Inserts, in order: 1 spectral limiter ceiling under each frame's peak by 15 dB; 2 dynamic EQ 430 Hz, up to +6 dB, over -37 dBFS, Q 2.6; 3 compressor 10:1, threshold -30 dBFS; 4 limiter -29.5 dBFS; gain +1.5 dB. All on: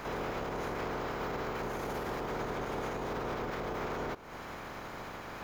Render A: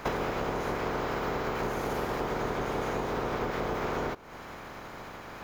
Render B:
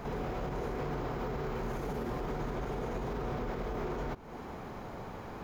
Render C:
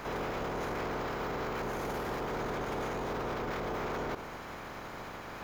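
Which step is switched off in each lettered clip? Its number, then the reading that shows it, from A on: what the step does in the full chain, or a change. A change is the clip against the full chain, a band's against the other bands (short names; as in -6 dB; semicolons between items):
4, mean gain reduction 3.5 dB; 1, 125 Hz band +8.5 dB; 3, mean gain reduction 11.0 dB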